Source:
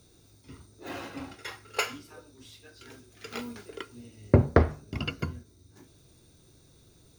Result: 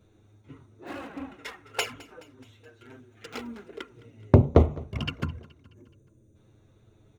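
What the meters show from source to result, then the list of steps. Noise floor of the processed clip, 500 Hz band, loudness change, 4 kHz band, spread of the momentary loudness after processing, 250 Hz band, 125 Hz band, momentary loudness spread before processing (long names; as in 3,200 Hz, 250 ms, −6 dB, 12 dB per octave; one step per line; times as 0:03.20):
−61 dBFS, +2.0 dB, +3.5 dB, +1.0 dB, 23 LU, +2.5 dB, +3.5 dB, 24 LU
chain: adaptive Wiener filter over 9 samples
flanger swept by the level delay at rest 10.3 ms, full sweep at −24.5 dBFS
gain on a spectral selection 0:05.64–0:06.36, 630–5,900 Hz −14 dB
tape wow and flutter 16 cents
on a send: repeating echo 212 ms, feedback 54%, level −21.5 dB
on the sum: level +3.5 dB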